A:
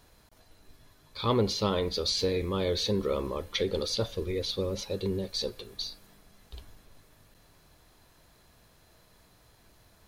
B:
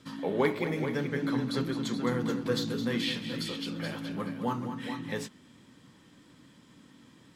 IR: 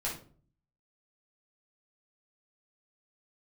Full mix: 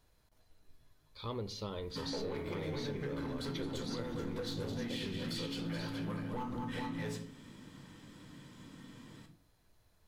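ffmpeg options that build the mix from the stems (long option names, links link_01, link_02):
-filter_complex "[0:a]volume=-13.5dB,asplit=2[link_01][link_02];[link_02]volume=-16dB[link_03];[1:a]alimiter=level_in=2.5dB:limit=-24dB:level=0:latency=1:release=405,volume=-2.5dB,asoftclip=type=tanh:threshold=-34.5dB,adelay=1900,volume=-2dB,asplit=2[link_04][link_05];[link_05]volume=-4dB[link_06];[2:a]atrim=start_sample=2205[link_07];[link_03][link_06]amix=inputs=2:normalize=0[link_08];[link_08][link_07]afir=irnorm=-1:irlink=0[link_09];[link_01][link_04][link_09]amix=inputs=3:normalize=0,lowshelf=frequency=100:gain=5.5,acompressor=threshold=-35dB:ratio=6"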